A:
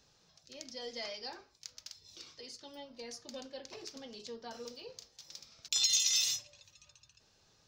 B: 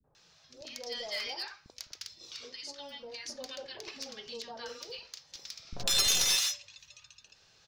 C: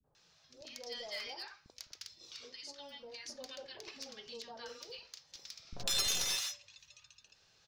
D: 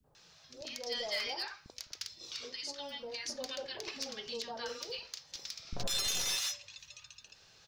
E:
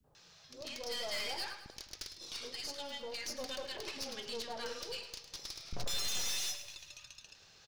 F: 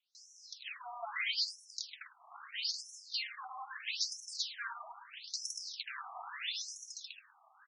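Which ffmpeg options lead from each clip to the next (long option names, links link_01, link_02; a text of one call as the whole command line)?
ffmpeg -i in.wav -filter_complex "[0:a]equalizer=frequency=2100:width=0.34:gain=9,acrossover=split=150|1800[link_01][link_02][link_03];[link_03]aeval=exprs='clip(val(0),-1,0.0237)':channel_layout=same[link_04];[link_01][link_02][link_04]amix=inputs=3:normalize=0,acrossover=split=270|940[link_05][link_06][link_07];[link_06]adelay=40[link_08];[link_07]adelay=150[link_09];[link_05][link_08][link_09]amix=inputs=3:normalize=0" out.wav
ffmpeg -i in.wav -af "adynamicequalizer=threshold=0.00708:dfrequency=2000:dqfactor=0.7:tfrequency=2000:tqfactor=0.7:attack=5:release=100:ratio=0.375:range=2.5:mode=cutabove:tftype=highshelf,volume=-5dB" out.wav
ffmpeg -i in.wav -af "alimiter=level_in=6dB:limit=-24dB:level=0:latency=1:release=204,volume=-6dB,volume=7dB" out.wav
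ffmpeg -i in.wav -af "aeval=exprs='(tanh(70.8*val(0)+0.55)-tanh(0.55))/70.8':channel_layout=same,aecho=1:1:105|210|315|420|525:0.251|0.126|0.0628|0.0314|0.0157,volume=2.5dB" out.wav
ffmpeg -i in.wav -af "afftfilt=real='re*between(b*sr/1024,900*pow(7700/900,0.5+0.5*sin(2*PI*0.77*pts/sr))/1.41,900*pow(7700/900,0.5+0.5*sin(2*PI*0.77*pts/sr))*1.41)':imag='im*between(b*sr/1024,900*pow(7700/900,0.5+0.5*sin(2*PI*0.77*pts/sr))/1.41,900*pow(7700/900,0.5+0.5*sin(2*PI*0.77*pts/sr))*1.41)':win_size=1024:overlap=0.75,volume=8.5dB" out.wav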